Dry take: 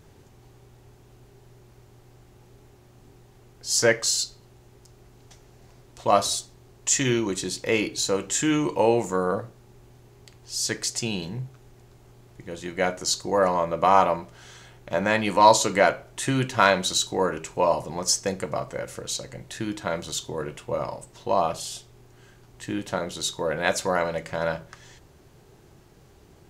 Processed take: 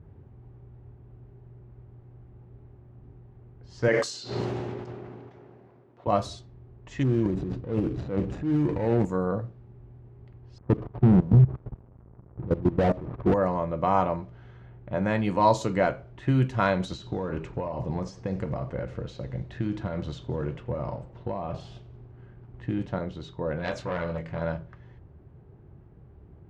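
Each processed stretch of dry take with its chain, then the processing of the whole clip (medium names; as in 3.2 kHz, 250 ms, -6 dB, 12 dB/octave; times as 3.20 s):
3.88–6.07 s: high-pass 270 Hz + decay stretcher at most 20 dB/s
7.03–9.05 s: median filter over 41 samples + transient shaper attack -6 dB, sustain +10 dB
10.58–13.34 s: brick-wall FIR low-pass 1.3 kHz + waveshaping leveller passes 5 + level held to a coarse grid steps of 18 dB
16.80–22.86 s: compression 10:1, threshold -26 dBFS + waveshaping leveller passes 1 + modulated delay 89 ms, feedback 52%, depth 169 cents, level -20 dB
23.59–24.41 s: treble shelf 3.6 kHz +6.5 dB + doubling 24 ms -6 dB + transformer saturation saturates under 3.4 kHz
whole clip: RIAA curve playback; level-controlled noise filter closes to 1.7 kHz, open at -13.5 dBFS; high-pass 61 Hz; trim -6.5 dB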